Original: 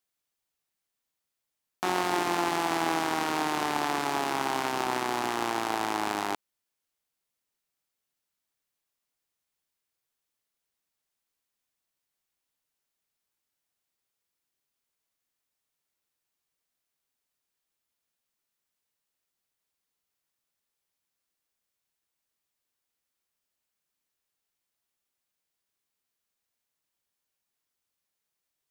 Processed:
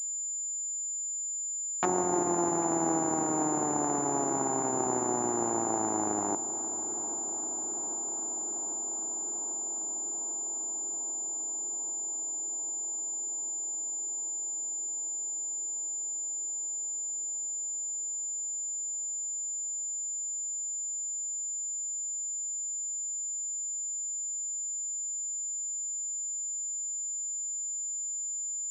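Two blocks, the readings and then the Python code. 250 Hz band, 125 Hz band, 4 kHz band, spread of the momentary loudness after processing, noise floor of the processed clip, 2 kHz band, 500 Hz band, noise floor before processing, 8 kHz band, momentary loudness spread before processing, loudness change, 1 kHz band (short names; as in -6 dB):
+2.5 dB, n/a, under -20 dB, 4 LU, -35 dBFS, under -10 dB, +1.5 dB, -85 dBFS, +20.0 dB, 3 LU, -2.0 dB, -3.0 dB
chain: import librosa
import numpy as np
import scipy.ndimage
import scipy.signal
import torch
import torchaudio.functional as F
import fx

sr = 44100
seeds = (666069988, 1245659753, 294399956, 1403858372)

y = fx.env_lowpass_down(x, sr, base_hz=680.0, full_db=-27.5)
y = fx.echo_tape(y, sr, ms=793, feedback_pct=88, wet_db=-14.0, lp_hz=2600.0, drive_db=17.0, wow_cents=31)
y = fx.pwm(y, sr, carrier_hz=7100.0)
y = F.gain(torch.from_numpy(y), 2.5).numpy()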